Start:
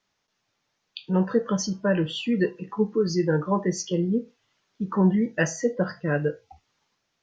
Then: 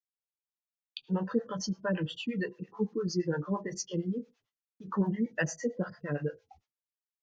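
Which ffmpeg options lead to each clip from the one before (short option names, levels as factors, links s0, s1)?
-filter_complex "[0:a]agate=range=0.0224:threshold=0.00282:ratio=3:detection=peak,acrossover=split=490[s0][s1];[s0]aeval=exprs='val(0)*(1-1/2+1/2*cos(2*PI*8.8*n/s))':c=same[s2];[s1]aeval=exprs='val(0)*(1-1/2-1/2*cos(2*PI*8.8*n/s))':c=same[s3];[s2][s3]amix=inputs=2:normalize=0,volume=0.668"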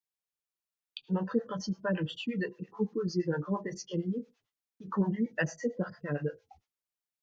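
-filter_complex "[0:a]acrossover=split=5200[s0][s1];[s1]acompressor=threshold=0.00178:ratio=4:attack=1:release=60[s2];[s0][s2]amix=inputs=2:normalize=0"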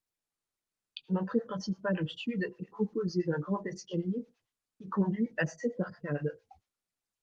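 -ar 48000 -c:a libopus -b:a 32k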